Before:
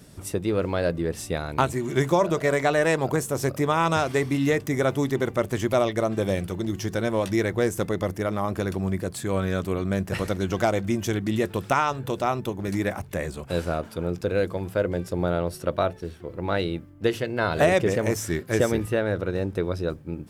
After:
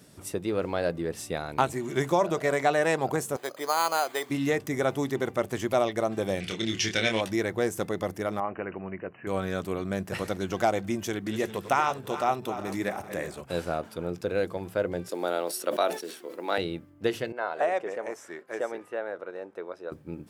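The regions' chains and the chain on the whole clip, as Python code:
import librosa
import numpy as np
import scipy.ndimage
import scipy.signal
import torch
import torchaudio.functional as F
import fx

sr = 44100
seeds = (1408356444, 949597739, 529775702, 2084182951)

y = fx.chain(x, sr, fx.highpass(hz=520.0, slope=12),
    fx.resample_bad(factor=8, down='filtered', up='hold'), at=(3.36, 4.3))
y = fx.chain(y, sr, fx.lowpass(hz=5200.0, slope=12),
    fx.high_shelf_res(hz=1600.0, db=13.0, q=1.5),
    fx.doubler(ms=27.0, db=-5), at=(6.4, 7.21))
y = fx.chain(y, sr, fx.brickwall_lowpass(high_hz=3000.0),
    fx.low_shelf(hz=230.0, db=-10.5), at=(8.4, 9.27))
y = fx.chain(y, sr, fx.reverse_delay_fb(ms=197, feedback_pct=57, wet_db=-11.0),
    fx.low_shelf(hz=120.0, db=-6.0), at=(11.03, 13.41))
y = fx.chain(y, sr, fx.highpass(hz=260.0, slope=24),
    fx.high_shelf(hz=3700.0, db=12.0),
    fx.sustainer(db_per_s=110.0), at=(15.09, 16.58))
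y = fx.chain(y, sr, fx.bandpass_edges(low_hz=580.0, high_hz=6000.0),
    fx.peak_eq(hz=4300.0, db=-14.0, octaves=2.0), at=(17.32, 19.92))
y = fx.highpass(y, sr, hz=180.0, slope=6)
y = fx.dynamic_eq(y, sr, hz=770.0, q=6.6, threshold_db=-43.0, ratio=4.0, max_db=6)
y = y * librosa.db_to_amplitude(-3.0)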